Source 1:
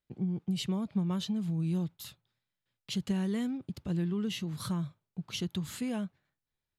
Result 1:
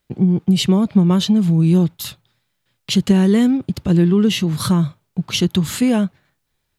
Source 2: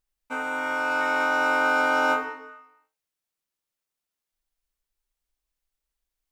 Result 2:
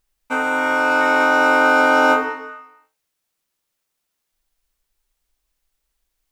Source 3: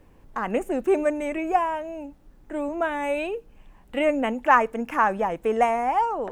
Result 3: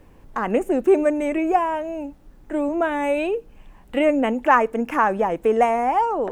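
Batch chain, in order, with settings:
dynamic equaliser 350 Hz, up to +5 dB, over −36 dBFS, Q 0.94
in parallel at −2 dB: downward compressor, threshold −28 dBFS
on the sum: normalise the peak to −3 dBFS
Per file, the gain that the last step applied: +12.0, +5.0, −0.5 decibels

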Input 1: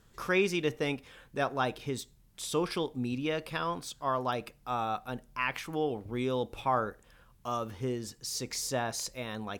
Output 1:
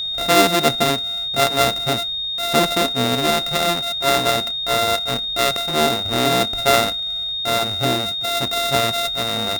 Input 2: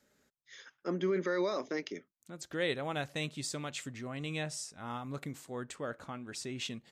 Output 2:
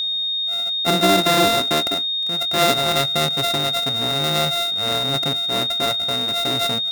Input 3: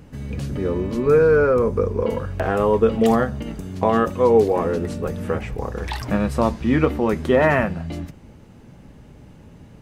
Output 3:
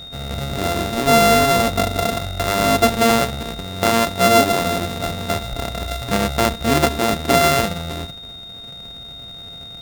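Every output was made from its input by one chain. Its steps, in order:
samples sorted by size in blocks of 64 samples
steady tone 3,700 Hz −35 dBFS
loudness normalisation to −18 LKFS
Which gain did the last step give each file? +13.0, +15.0, +1.0 decibels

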